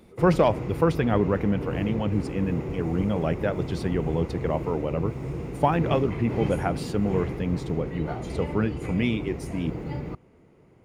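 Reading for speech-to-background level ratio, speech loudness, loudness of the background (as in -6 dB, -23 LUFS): 6.0 dB, -27.0 LUFS, -33.0 LUFS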